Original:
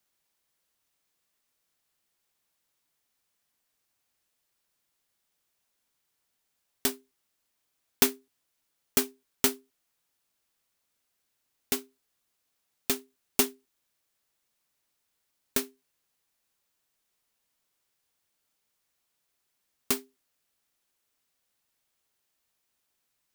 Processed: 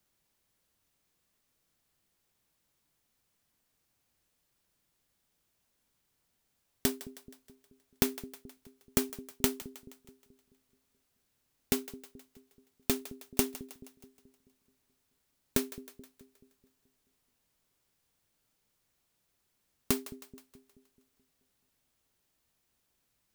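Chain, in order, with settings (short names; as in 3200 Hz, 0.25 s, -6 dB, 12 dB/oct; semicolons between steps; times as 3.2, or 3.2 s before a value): low shelf 340 Hz +11 dB; compressor 5:1, threshold -24 dBFS, peak gain reduction 10 dB; split-band echo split 450 Hz, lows 0.215 s, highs 0.158 s, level -15.5 dB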